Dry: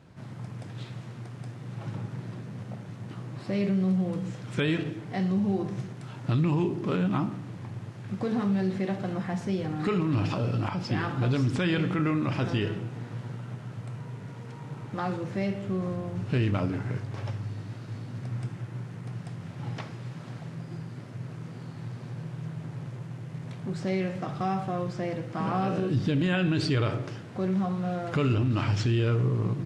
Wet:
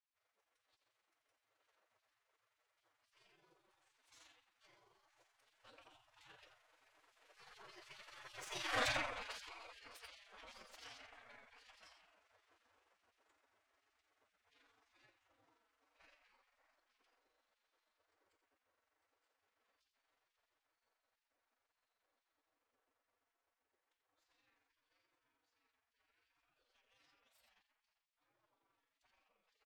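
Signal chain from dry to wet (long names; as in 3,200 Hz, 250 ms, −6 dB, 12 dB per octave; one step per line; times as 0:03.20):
stylus tracing distortion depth 0.12 ms
source passing by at 0:08.78, 35 m/s, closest 1.8 metres
hum removal 86.57 Hz, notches 7
on a send: single-tap delay 85 ms −10 dB
on the sum: amplitude modulation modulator 23 Hz, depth 25%
comb filter 6.3 ms, depth 32%
gate on every frequency bin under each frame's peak −25 dB weak
phase-vocoder pitch shift with formants kept +3 semitones
level +16 dB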